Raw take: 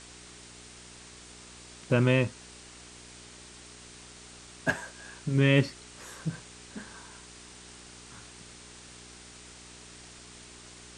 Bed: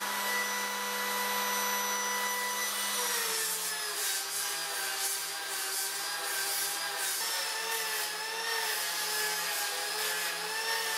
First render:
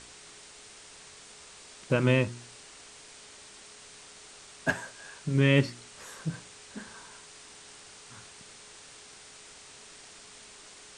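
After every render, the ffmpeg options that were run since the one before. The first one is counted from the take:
-af "bandreject=f=60:t=h:w=4,bandreject=f=120:t=h:w=4,bandreject=f=180:t=h:w=4,bandreject=f=240:t=h:w=4,bandreject=f=300:t=h:w=4,bandreject=f=360:t=h:w=4"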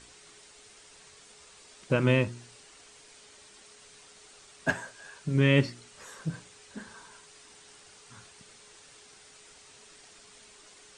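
-af "afftdn=nr=6:nf=-51"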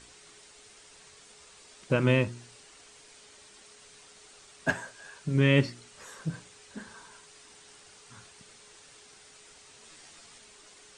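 -filter_complex "[0:a]asettb=1/sr,asplit=3[s0][s1][s2];[s0]atrim=end=9.824[s3];[s1]atrim=start=9.82:end=10.38,asetpts=PTS-STARTPTS,afade=t=in:d=0.004:c=qsin,afade=t=out:st=0.556:d=0.004:c=qsin,asplit=2[s4][s5];[s5]adelay=13,volume=0.708[s6];[s4][s6]amix=inputs=2:normalize=0,atrim=end_sample=24696[s7];[s2]atrim=start=10.376[s8];[s3][s7]acrossfade=d=0.004:c1=hsin:c2=qsin[s9];[s9][s8]acrossfade=d=0.004:c1=qsin:c2=hsin"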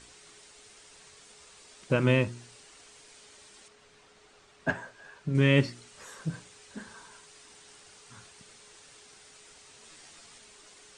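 -filter_complex "[0:a]asettb=1/sr,asplit=3[s0][s1][s2];[s0]atrim=end=3.684[s3];[s1]atrim=start=3.68:end=5.35,asetpts=PTS-STARTPTS,afade=t=in:d=0.004:c=qsin,afade=t=out:st=1.666:d=0.004:c=qsin,aemphasis=mode=reproduction:type=75kf[s4];[s2]atrim=start=5.346[s5];[s3][s4]acrossfade=d=0.004:c1=hsin:c2=qsin[s6];[s6][s5]acrossfade=d=0.004:c1=qsin:c2=hsin"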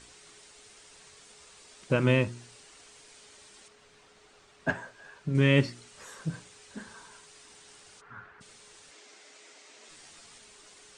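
-filter_complex "[0:a]asplit=3[s0][s1][s2];[s0]afade=t=out:st=8:d=0.02[s3];[s1]lowpass=f=1500:t=q:w=3.6,afade=t=in:st=8:d=0.02,afade=t=out:st=8.4:d=0.02[s4];[s2]afade=t=in:st=8.4:d=0.02[s5];[s3][s4][s5]amix=inputs=3:normalize=0,asettb=1/sr,asplit=3[s6][s7][s8];[s6]atrim=end=8.914[s9];[s7]atrim=start=8.91:end=9.89,asetpts=PTS-STARTPTS,afade=t=in:d=0.004:c=qsin,afade=t=out:st=0.976:d=0.004:c=qsin,highpass=f=180:w=0.5412,highpass=f=180:w=1.3066,equalizer=f=180:t=q:w=4:g=-10,equalizer=f=310:t=q:w=4:g=5,equalizer=f=610:t=q:w=4:g=6,equalizer=f=2100:t=q:w=4:g=5,lowpass=f=8100:w=0.5412,lowpass=f=8100:w=1.3066[s10];[s8]atrim=start=9.886[s11];[s9][s10]acrossfade=d=0.004:c1=hsin:c2=qsin[s12];[s12][s11]acrossfade=d=0.004:c1=qsin:c2=hsin"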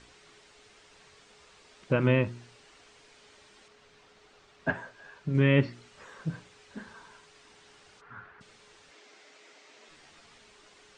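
-filter_complex "[0:a]acrossover=split=3200[s0][s1];[s1]acompressor=threshold=0.00158:ratio=4:attack=1:release=60[s2];[s0][s2]amix=inputs=2:normalize=0,lowpass=5900"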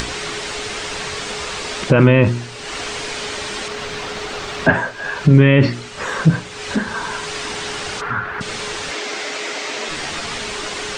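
-af "acompressor=mode=upward:threshold=0.0126:ratio=2.5,alimiter=level_in=12.6:limit=0.891:release=50:level=0:latency=1"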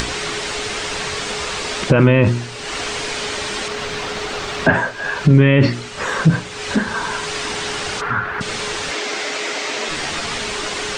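-af "volume=1.26,alimiter=limit=0.794:level=0:latency=1"

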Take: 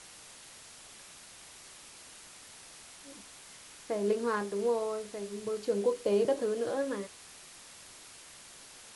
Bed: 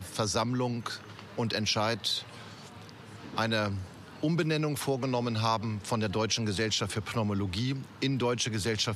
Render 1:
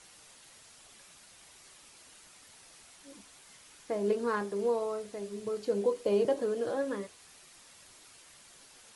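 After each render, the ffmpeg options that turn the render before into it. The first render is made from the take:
-af "afftdn=nr=6:nf=-52"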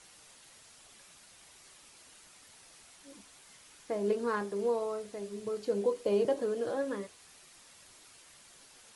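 -af "volume=0.891"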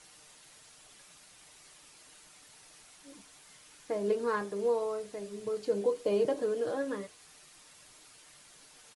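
-af "aecho=1:1:6.6:0.31"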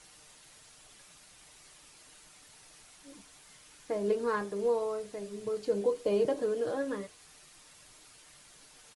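-af "lowshelf=f=91:g=7"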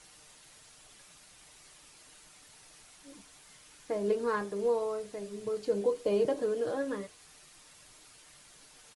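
-af anull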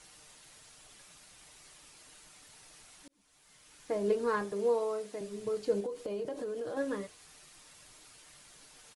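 -filter_complex "[0:a]asettb=1/sr,asplit=3[s0][s1][s2];[s0]atrim=end=4.524[s3];[s1]atrim=start=4.52:end=5.21,asetpts=PTS-STARTPTS,afade=t=in:d=0.004:c=qsin,afade=t=out:st=0.686:d=0.004:c=qsin,highpass=f=170:w=0.5412,highpass=f=170:w=1.3066[s4];[s2]atrim=start=5.206[s5];[s3][s4]acrossfade=d=0.004:c1=hsin:c2=qsin[s6];[s6][s5]acrossfade=d=0.004:c1=qsin:c2=hsin,asettb=1/sr,asplit=3[s7][s8][s9];[s7]atrim=end=5.804[s10];[s8]atrim=start=5.8:end=6.77,asetpts=PTS-STARTPTS,afade=t=in:d=0.004:c=qsin,afade=t=out:st=0.966:d=0.004:c=qsin,acompressor=threshold=0.0178:ratio=4:attack=3.2:release=140:knee=1:detection=peak[s11];[s9]atrim=start=6.766[s12];[s10][s11]acrossfade=d=0.004:c1=hsin:c2=qsin[s13];[s13][s12]acrossfade=d=0.004:c1=qsin:c2=hsin,asplit=2[s14][s15];[s14]atrim=end=3.08,asetpts=PTS-STARTPTS,afade=t=out:st=3.076:d=0.004:c=hsin[s16];[s15]atrim=start=3.08,asetpts=PTS-STARTPTS,afade=t=in:d=0.83[s17];[s16][s17]concat=n=2:v=0:a=1"

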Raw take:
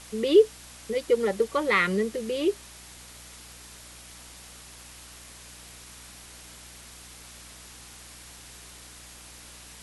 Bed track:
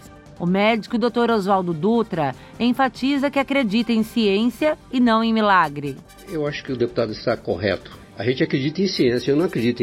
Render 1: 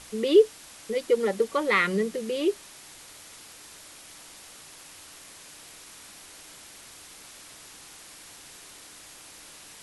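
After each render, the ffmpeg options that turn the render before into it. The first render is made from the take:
-af "bandreject=f=60:t=h:w=4,bandreject=f=120:t=h:w=4,bandreject=f=180:t=h:w=4,bandreject=f=240:t=h:w=4"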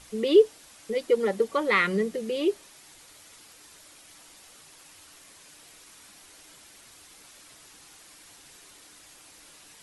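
-af "afftdn=nr=6:nf=-48"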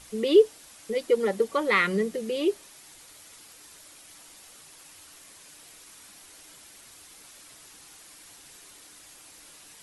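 -af "highshelf=f=9500:g=5.5"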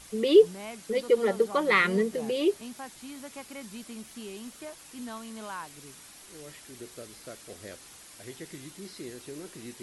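-filter_complex "[1:a]volume=0.0668[s0];[0:a][s0]amix=inputs=2:normalize=0"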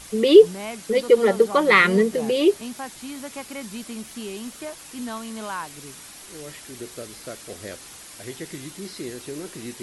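-af "volume=2.37,alimiter=limit=0.794:level=0:latency=1"

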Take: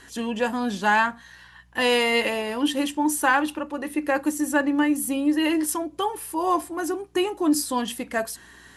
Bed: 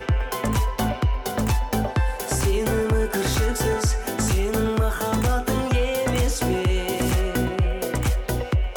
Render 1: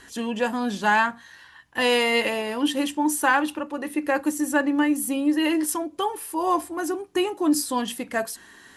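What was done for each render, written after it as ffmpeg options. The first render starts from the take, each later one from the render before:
-af "bandreject=f=60:t=h:w=4,bandreject=f=120:t=h:w=4,bandreject=f=180:t=h:w=4"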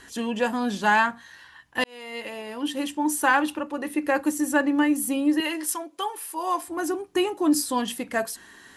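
-filter_complex "[0:a]asettb=1/sr,asplit=3[s0][s1][s2];[s0]atrim=end=5.404[s3];[s1]atrim=start=5.4:end=6.68,asetpts=PTS-STARTPTS,afade=t=in:d=0.004:c=qsin,afade=t=out:st=1.276:d=0.004:c=qsin,highpass=f=870:p=1[s4];[s2]atrim=start=6.676[s5];[s3][s4]acrossfade=d=0.004:c1=hsin:c2=qsin[s6];[s6][s5]acrossfade=d=0.004:c1=qsin:c2=hsin,asplit=2[s7][s8];[s7]atrim=end=1.84,asetpts=PTS-STARTPTS,afade=t=out:st=1.836:d=0.004:c=hsin[s9];[s8]atrim=start=1.84,asetpts=PTS-STARTPTS,afade=t=in:d=1.5[s10];[s9][s10]concat=n=2:v=0:a=1"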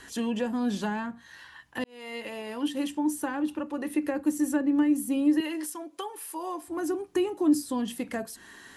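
-filter_complex "[0:a]acrossover=split=420[s0][s1];[s1]acompressor=threshold=0.0158:ratio=6[s2];[s0][s2]amix=inputs=2:normalize=0"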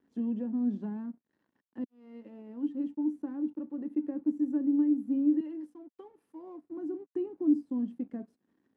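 -af "aeval=exprs='sgn(val(0))*max(abs(val(0))-0.00422,0)':c=same,bandpass=f=250:t=q:w=2.5:csg=0"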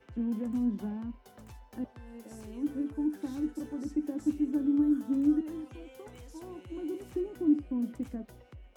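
-filter_complex "[1:a]volume=0.0376[s0];[0:a][s0]amix=inputs=2:normalize=0"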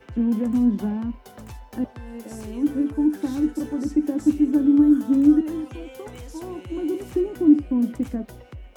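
-af "volume=3.35"

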